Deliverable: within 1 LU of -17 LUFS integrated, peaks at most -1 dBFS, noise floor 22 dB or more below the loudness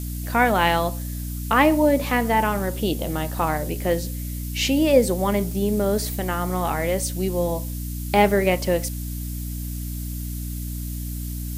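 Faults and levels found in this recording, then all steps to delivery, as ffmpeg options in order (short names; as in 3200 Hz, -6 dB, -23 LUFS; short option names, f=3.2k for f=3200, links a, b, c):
hum 60 Hz; harmonics up to 300 Hz; hum level -27 dBFS; noise floor -30 dBFS; noise floor target -45 dBFS; loudness -23.0 LUFS; peak -3.5 dBFS; loudness target -17.0 LUFS
-> -af "bandreject=f=60:t=h:w=6,bandreject=f=120:t=h:w=6,bandreject=f=180:t=h:w=6,bandreject=f=240:t=h:w=6,bandreject=f=300:t=h:w=6"
-af "afftdn=nr=15:nf=-30"
-af "volume=6dB,alimiter=limit=-1dB:level=0:latency=1"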